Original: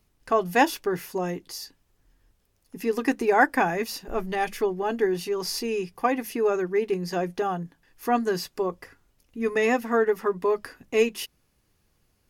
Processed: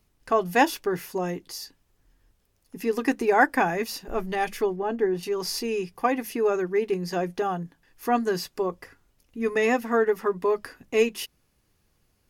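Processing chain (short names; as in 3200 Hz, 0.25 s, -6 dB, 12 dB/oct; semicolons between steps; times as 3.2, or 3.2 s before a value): 4.76–5.23 high shelf 2300 Hz -11.5 dB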